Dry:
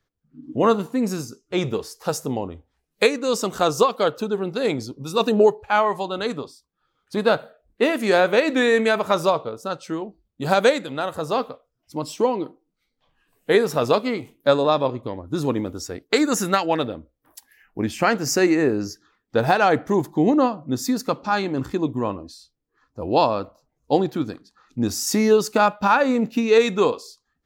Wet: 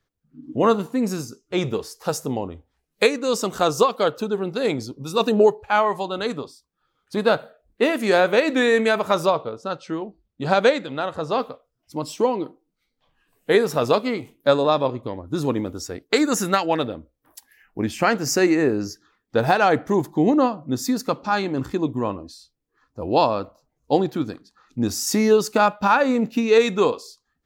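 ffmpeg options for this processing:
-filter_complex "[0:a]asettb=1/sr,asplit=3[a][b][c];[a]atrim=end=9.264[d];[b]atrim=start=9.26:end=11.4,asetpts=PTS-STARTPTS,afade=t=in:d=0.004:c=qsin,afade=t=out:st=2.136:d=0.004:c=qsin,lowpass=5.3k[e];[c]atrim=start=11.396[f];[d][e]acrossfade=d=0.004:c1=hsin:c2=qsin[g];[g][f]acrossfade=d=0.004:c1=qsin:c2=hsin"

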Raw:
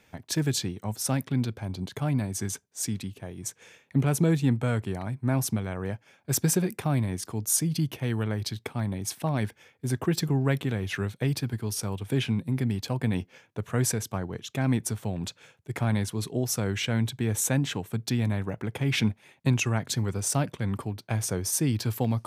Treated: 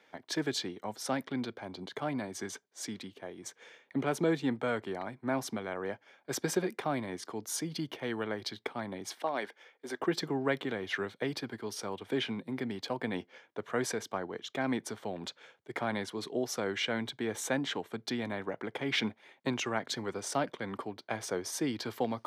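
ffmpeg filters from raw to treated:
-filter_complex "[0:a]asettb=1/sr,asplit=3[a][b][c];[a]atrim=end=9.144[d];[b]atrim=start=9.14:end=10,asetpts=PTS-STARTPTS,afade=t=in:d=0.004:c=qsin,afade=t=out:st=0.856:d=0.004:c=qsin,highpass=350[e];[c]atrim=start=9.996[f];[d][e]acrossfade=d=0.004:c1=hsin:c2=qsin[g];[g][f]acrossfade=d=0.004:c1=qsin:c2=hsin,acrossover=split=260 4900:gain=0.0631 1 0.158[h][i][j];[h][i][j]amix=inputs=3:normalize=0,bandreject=f=2.6k:w=8.3"

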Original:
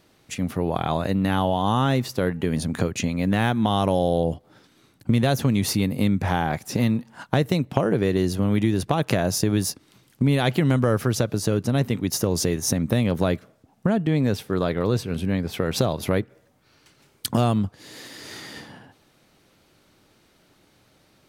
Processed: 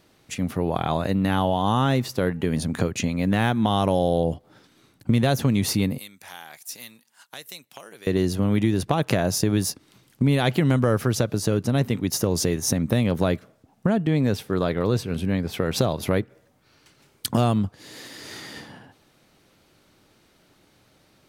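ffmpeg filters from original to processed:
-filter_complex "[0:a]asettb=1/sr,asplit=3[a][b][c];[a]atrim=end=5.984[d];[b]atrim=start=5.98:end=8.07,asetpts=PTS-STARTPTS,afade=t=in:d=0.004:c=qsin,afade=t=out:st=2.086:d=0.004:c=qsin,aderivative[e];[c]atrim=start=8.066[f];[d][e]acrossfade=d=0.004:c1=hsin:c2=qsin[g];[g][f]acrossfade=d=0.004:c1=qsin:c2=hsin"

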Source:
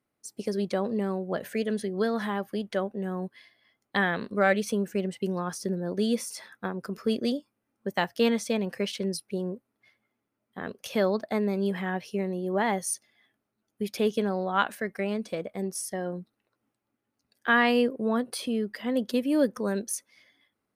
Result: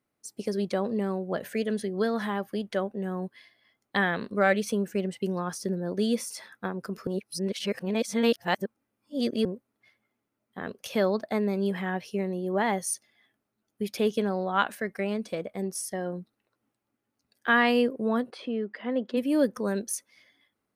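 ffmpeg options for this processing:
-filter_complex "[0:a]asplit=3[a][b][c];[a]afade=t=out:st=18.3:d=0.02[d];[b]highpass=230,lowpass=2.5k,afade=t=in:st=18.3:d=0.02,afade=t=out:st=19.16:d=0.02[e];[c]afade=t=in:st=19.16:d=0.02[f];[d][e][f]amix=inputs=3:normalize=0,asplit=3[g][h][i];[g]atrim=end=7.072[j];[h]atrim=start=7.068:end=9.452,asetpts=PTS-STARTPTS,areverse[k];[i]atrim=start=9.448[l];[j][k]acrossfade=d=0.004:c1=hsin:c2=hsin[m];[m][l]acrossfade=d=0.004:c1=hsin:c2=hsin"

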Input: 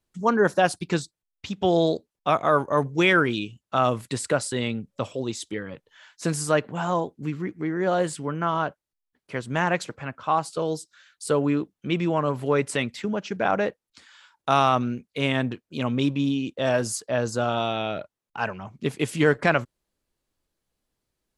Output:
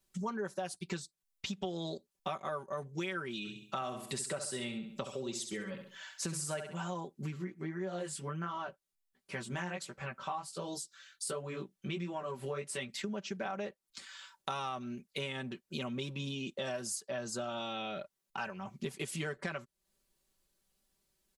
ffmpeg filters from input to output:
-filter_complex "[0:a]asplit=3[a][b][c];[a]afade=t=out:st=3.44:d=0.02[d];[b]aecho=1:1:67|134|201|268:0.376|0.132|0.046|0.0161,afade=t=in:st=3.44:d=0.02,afade=t=out:st=6.75:d=0.02[e];[c]afade=t=in:st=6.75:d=0.02[f];[d][e][f]amix=inputs=3:normalize=0,asplit=3[g][h][i];[g]afade=t=out:st=7.36:d=0.02[j];[h]flanger=delay=15.5:depth=7:speed=1.4,afade=t=in:st=7.36:d=0.02,afade=t=out:st=12.9:d=0.02[k];[i]afade=t=in:st=12.9:d=0.02[l];[j][k][l]amix=inputs=3:normalize=0,highshelf=f=3.5k:g=8.5,aecho=1:1:5.2:0.76,acompressor=threshold=-33dB:ratio=6,volume=-3.5dB"

